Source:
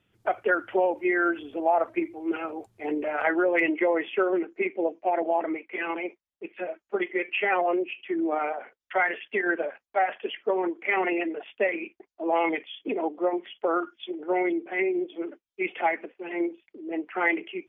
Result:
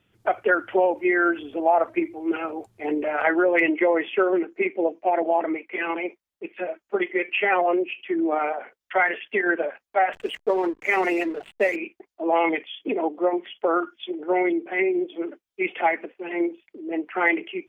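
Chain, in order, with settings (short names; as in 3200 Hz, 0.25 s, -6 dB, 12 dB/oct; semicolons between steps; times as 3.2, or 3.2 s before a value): 10.13–11.76 backlash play -40 dBFS; gain +3.5 dB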